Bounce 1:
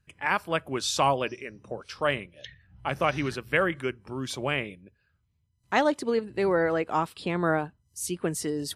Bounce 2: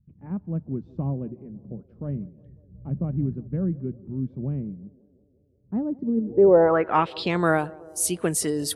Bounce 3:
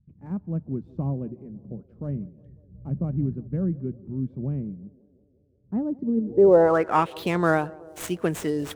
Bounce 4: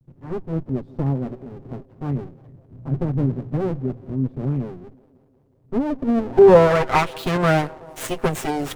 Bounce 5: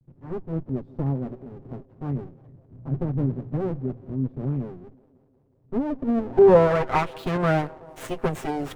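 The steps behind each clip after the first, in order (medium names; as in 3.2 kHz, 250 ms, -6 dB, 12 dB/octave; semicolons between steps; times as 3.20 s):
band-passed feedback delay 182 ms, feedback 75%, band-pass 460 Hz, level -20.5 dB; low-pass sweep 200 Hz -> 11 kHz, 6.15–7.51 s; trim +4 dB
median filter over 9 samples
comb filter that takes the minimum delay 7.6 ms; trim +6 dB
treble shelf 2.8 kHz -8.5 dB; trim -3.5 dB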